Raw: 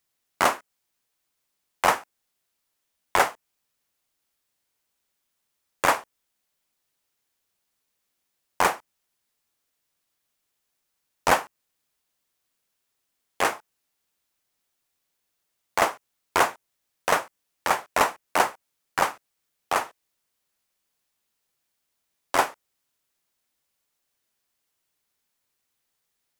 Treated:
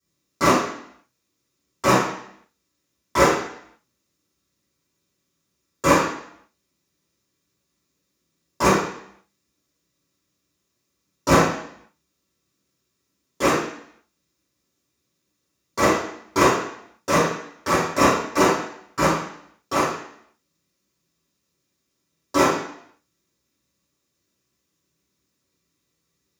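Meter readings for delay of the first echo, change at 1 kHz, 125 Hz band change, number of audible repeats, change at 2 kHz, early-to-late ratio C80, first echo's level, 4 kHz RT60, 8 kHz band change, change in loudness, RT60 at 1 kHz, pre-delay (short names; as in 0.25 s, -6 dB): none, +3.0 dB, +16.5 dB, none, +2.0 dB, 5.0 dB, none, 0.70 s, +4.5 dB, +4.0 dB, 0.65 s, 3 ms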